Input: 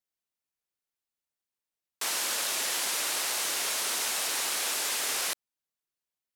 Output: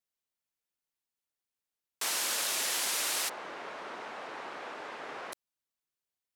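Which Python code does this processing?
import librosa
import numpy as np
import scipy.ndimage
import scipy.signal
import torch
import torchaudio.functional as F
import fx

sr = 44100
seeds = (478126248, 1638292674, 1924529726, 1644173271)

y = fx.lowpass(x, sr, hz=1300.0, slope=12, at=(3.28, 5.32), fade=0.02)
y = F.gain(torch.from_numpy(y), -1.5).numpy()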